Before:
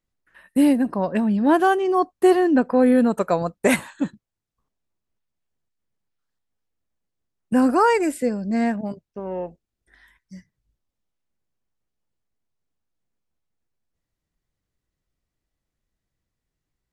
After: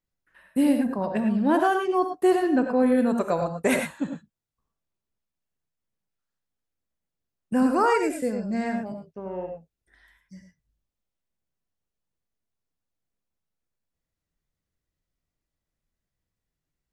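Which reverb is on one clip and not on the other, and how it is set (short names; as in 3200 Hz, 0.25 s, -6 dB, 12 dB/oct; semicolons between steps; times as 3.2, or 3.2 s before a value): non-linear reverb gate 0.13 s rising, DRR 4 dB; gain -5 dB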